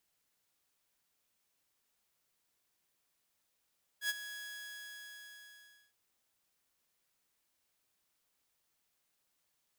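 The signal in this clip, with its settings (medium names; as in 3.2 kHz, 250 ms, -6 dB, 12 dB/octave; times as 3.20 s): ADSR saw 1.67 kHz, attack 85 ms, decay 29 ms, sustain -13 dB, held 0.32 s, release 1600 ms -27.5 dBFS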